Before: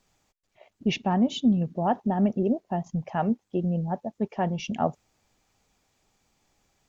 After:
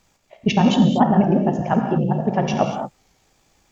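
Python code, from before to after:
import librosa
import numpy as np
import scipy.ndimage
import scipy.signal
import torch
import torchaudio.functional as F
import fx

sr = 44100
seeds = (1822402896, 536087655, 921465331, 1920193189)

y = fx.rev_gated(x, sr, seeds[0], gate_ms=470, shape='flat', drr_db=3.0)
y = fx.stretch_grains(y, sr, factor=0.54, grain_ms=35.0)
y = fx.record_warp(y, sr, rpm=33.33, depth_cents=100.0)
y = F.gain(torch.from_numpy(y), 8.5).numpy()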